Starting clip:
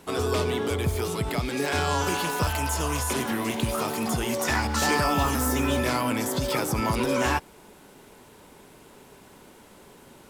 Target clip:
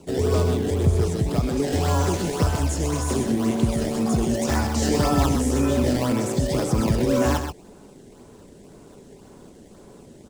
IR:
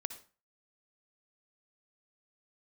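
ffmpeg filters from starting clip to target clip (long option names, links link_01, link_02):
-filter_complex "[0:a]lowpass=frequency=8300:width=0.5412,lowpass=frequency=8300:width=1.3066,equalizer=frequency=2600:width_type=o:width=2.8:gain=-12,bandreject=frequency=900:width=16,acrossover=split=620|2700[link_01][link_02][link_03];[link_02]acrusher=samples=21:mix=1:aa=0.000001:lfo=1:lforange=33.6:lforate=1.9[link_04];[link_01][link_04][link_03]amix=inputs=3:normalize=0,aecho=1:1:128:0.422,volume=6.5dB"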